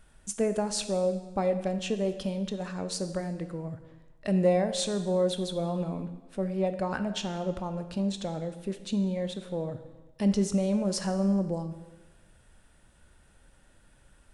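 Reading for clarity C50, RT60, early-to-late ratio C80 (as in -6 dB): 11.0 dB, 1.2 s, 12.5 dB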